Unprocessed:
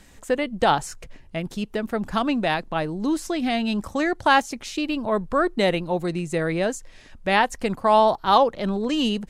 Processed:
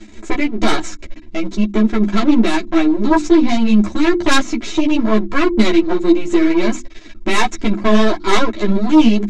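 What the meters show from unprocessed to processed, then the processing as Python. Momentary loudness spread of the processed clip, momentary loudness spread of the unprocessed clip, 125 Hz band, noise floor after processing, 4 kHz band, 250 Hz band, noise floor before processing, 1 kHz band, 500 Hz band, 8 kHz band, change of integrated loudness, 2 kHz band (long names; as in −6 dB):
8 LU, 10 LU, +6.5 dB, −36 dBFS, +5.0 dB, +12.5 dB, −48 dBFS, 0.0 dB, +4.5 dB, +7.5 dB, +7.0 dB, +5.0 dB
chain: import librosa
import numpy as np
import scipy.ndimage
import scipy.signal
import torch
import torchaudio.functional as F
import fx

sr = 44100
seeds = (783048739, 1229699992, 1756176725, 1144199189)

y = fx.dynamic_eq(x, sr, hz=590.0, q=1.0, threshold_db=-28.0, ratio=4.0, max_db=-4)
y = np.maximum(y, 0.0)
y = scipy.signal.sosfilt(scipy.signal.cheby1(4, 1.0, 7100.0, 'lowpass', fs=sr, output='sos'), y)
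y = fx.hum_notches(y, sr, base_hz=50, count=7)
y = y + 0.78 * np.pad(y, (int(3.0 * sr / 1000.0), 0))[:len(y)]
y = fx.small_body(y, sr, hz=(210.0, 320.0, 2200.0, 3800.0), ring_ms=65, db=15)
y = fx.fold_sine(y, sr, drive_db=12, ceiling_db=0.0)
y = fx.ensemble(y, sr)
y = y * librosa.db_to_amplitude(-4.0)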